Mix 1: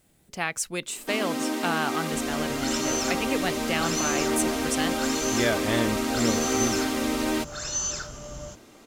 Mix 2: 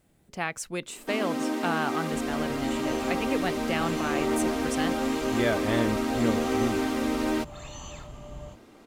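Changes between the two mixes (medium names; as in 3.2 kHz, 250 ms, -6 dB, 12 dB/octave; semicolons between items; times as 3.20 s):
second sound: add static phaser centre 1.5 kHz, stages 6; master: add treble shelf 2.6 kHz -8 dB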